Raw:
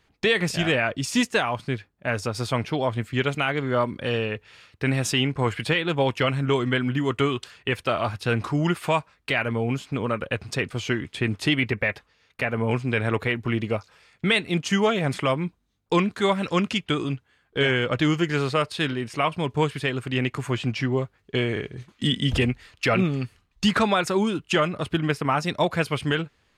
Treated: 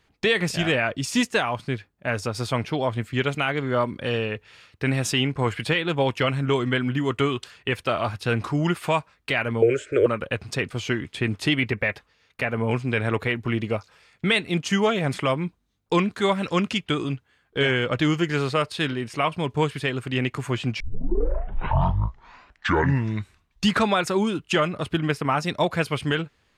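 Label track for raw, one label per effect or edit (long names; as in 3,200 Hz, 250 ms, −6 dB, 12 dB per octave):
9.620000	10.060000	drawn EQ curve 110 Hz 0 dB, 210 Hz −22 dB, 360 Hz +14 dB, 600 Hz +14 dB, 850 Hz −29 dB, 1,500 Hz +13 dB, 4,600 Hz −9 dB, 7,900 Hz +7 dB, 12,000 Hz −16 dB
20.800000	20.800000	tape start 2.87 s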